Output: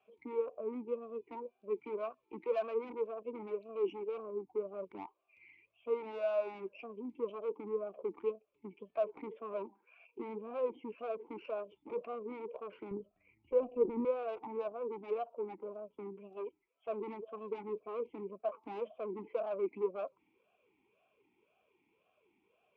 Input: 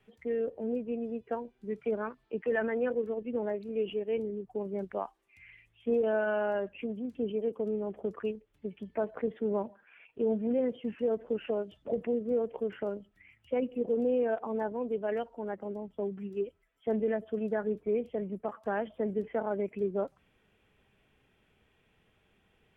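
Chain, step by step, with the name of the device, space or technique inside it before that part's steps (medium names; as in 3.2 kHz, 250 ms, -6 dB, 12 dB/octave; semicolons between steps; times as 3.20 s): talk box (valve stage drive 34 dB, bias 0.55; talking filter a-u 1.9 Hz); 12.91–14.05 s: tilt EQ -4 dB/octave; trim +9.5 dB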